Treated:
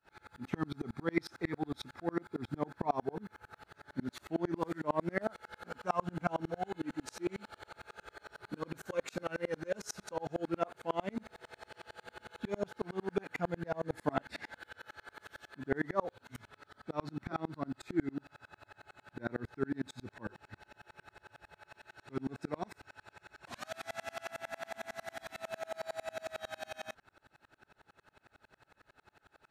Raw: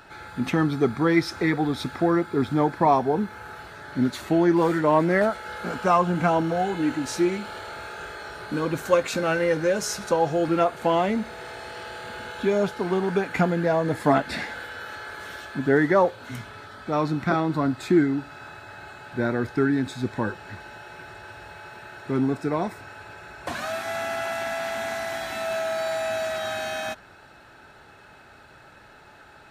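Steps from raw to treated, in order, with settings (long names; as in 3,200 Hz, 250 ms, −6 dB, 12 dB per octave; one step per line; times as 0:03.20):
0:21.68–0:24.31: parametric band 5,100 Hz +4 dB 2.4 octaves
tremolo with a ramp in dB swelling 11 Hz, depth 35 dB
level −6 dB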